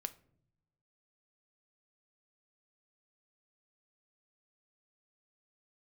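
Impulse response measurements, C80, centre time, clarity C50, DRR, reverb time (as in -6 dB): 22.5 dB, 5 ms, 18.0 dB, 11.0 dB, not exponential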